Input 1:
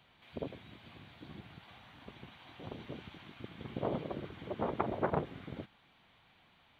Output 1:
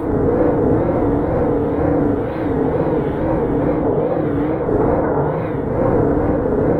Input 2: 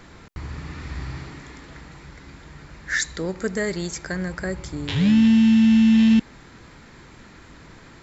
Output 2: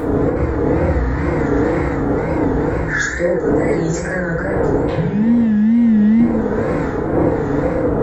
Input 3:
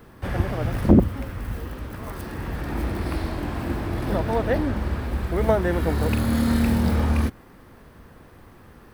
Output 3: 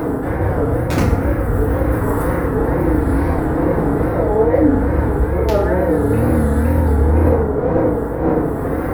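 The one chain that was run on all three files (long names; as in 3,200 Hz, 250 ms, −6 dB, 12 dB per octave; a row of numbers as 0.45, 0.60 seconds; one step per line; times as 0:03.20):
wind on the microphone 440 Hz −32 dBFS
notch filter 7,500 Hz, Q 22
in parallel at +3 dB: upward compression, threshold −19 dBFS
on the sum: flat-topped bell 4,000 Hz −13 dB
hollow resonant body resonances 500/3,700 Hz, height 7 dB, ringing for 25 ms
wrap-around overflow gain −3 dB
reversed playback
downward compressor 6 to 1, threshold −21 dBFS
reversed playback
feedback delay network reverb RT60 1.4 s, low-frequency decay 0.8×, high-frequency decay 0.35×, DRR −9.5 dB
tape wow and flutter 110 cents
level −3 dB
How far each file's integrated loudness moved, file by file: +23.0, +3.0, +7.5 LU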